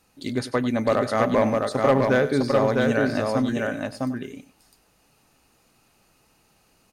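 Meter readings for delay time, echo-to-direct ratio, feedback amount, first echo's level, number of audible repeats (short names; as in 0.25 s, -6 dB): 96 ms, -2.5 dB, no steady repeat, -15.0 dB, 3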